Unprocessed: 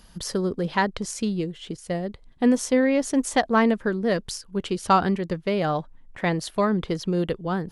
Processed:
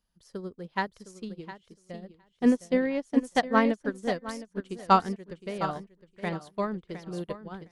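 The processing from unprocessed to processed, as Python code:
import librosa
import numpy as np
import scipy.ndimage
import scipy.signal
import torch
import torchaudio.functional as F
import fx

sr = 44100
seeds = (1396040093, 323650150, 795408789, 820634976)

y = fx.echo_feedback(x, sr, ms=711, feedback_pct=33, wet_db=-6)
y = fx.upward_expand(y, sr, threshold_db=-33.0, expansion=2.5)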